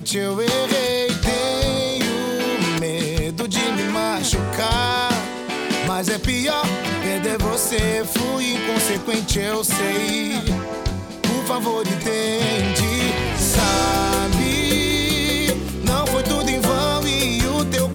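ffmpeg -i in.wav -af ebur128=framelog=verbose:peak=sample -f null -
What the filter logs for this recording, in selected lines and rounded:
Integrated loudness:
  I:         -20.0 LUFS
  Threshold: -30.0 LUFS
Loudness range:
  LRA:         2.6 LU
  Threshold: -40.1 LUFS
  LRA low:   -21.2 LUFS
  LRA high:  -18.6 LUFS
Sample peak:
  Peak:       -6.0 dBFS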